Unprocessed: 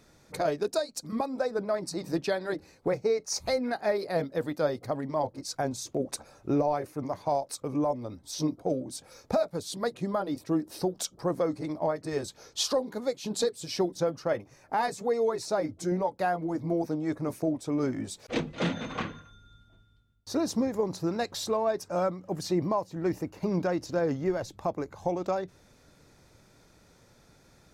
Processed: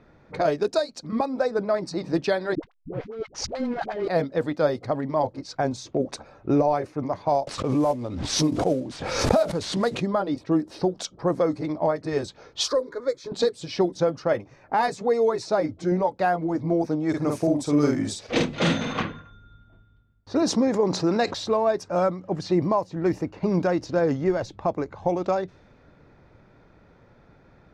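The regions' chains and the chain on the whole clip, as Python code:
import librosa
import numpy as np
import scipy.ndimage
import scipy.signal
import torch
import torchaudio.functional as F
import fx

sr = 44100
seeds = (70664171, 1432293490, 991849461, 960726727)

y = fx.chain(x, sr, fx.over_compress(threshold_db=-33.0, ratio=-1.0),
    fx.backlash(play_db=-34.5),
    fx.dispersion(late='highs', ms=79.0, hz=440.0), at=(2.55, 4.08))
y = fx.chain(y, sr, fx.cvsd(bps=64000),
    fx.pre_swell(db_per_s=42.0), at=(7.47, 10.03))
y = fx.chain(y, sr, fx.peak_eq(hz=2800.0, db=3.0, octaves=1.4),
    fx.fixed_phaser(hz=770.0, stages=6), at=(12.68, 13.32))
y = fx.chain(y, sr, fx.high_shelf(hz=5000.0, db=10.5),
    fx.doubler(ms=48.0, db=-3.0), at=(17.09, 19.01))
y = fx.chain(y, sr, fx.bandpass_edges(low_hz=170.0, high_hz=7500.0),
    fx.env_flatten(amount_pct=50), at=(20.42, 21.34))
y = fx.env_lowpass(y, sr, base_hz=2000.0, full_db=-22.5)
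y = fx.high_shelf(y, sr, hz=9900.0, db=-9.0)
y = y * librosa.db_to_amplitude(5.5)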